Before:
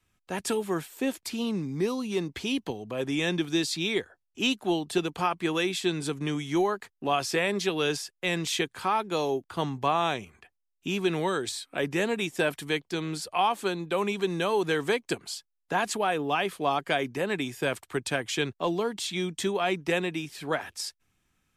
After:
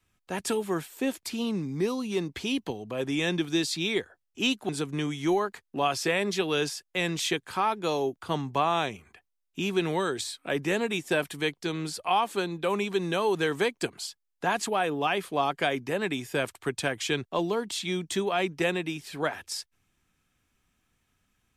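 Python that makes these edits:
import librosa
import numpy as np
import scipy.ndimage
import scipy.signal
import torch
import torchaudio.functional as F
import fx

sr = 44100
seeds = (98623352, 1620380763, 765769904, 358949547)

y = fx.edit(x, sr, fx.cut(start_s=4.69, length_s=1.28), tone=tone)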